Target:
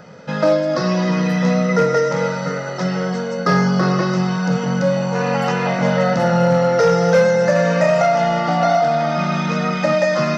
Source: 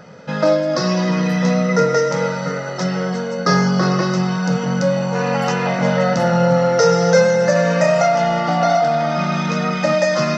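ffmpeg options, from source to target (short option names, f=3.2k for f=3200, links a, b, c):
-filter_complex "[0:a]asoftclip=type=hard:threshold=-7.5dB,acrossover=split=3900[a][b];[b]acompressor=threshold=-36dB:ratio=4:attack=1:release=60[c];[a][c]amix=inputs=2:normalize=0"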